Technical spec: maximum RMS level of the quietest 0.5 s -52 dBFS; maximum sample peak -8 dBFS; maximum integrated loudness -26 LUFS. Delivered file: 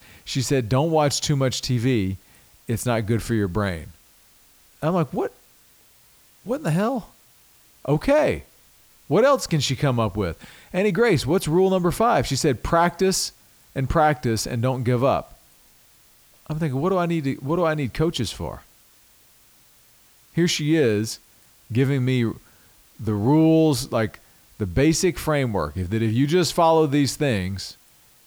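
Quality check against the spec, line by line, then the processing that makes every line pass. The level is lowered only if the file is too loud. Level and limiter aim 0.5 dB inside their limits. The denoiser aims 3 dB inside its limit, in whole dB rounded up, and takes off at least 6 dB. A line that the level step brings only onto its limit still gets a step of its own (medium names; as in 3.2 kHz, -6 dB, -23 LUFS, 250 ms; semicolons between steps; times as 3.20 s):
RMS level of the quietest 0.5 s -55 dBFS: pass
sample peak -7.0 dBFS: fail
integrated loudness -22.0 LUFS: fail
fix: trim -4.5 dB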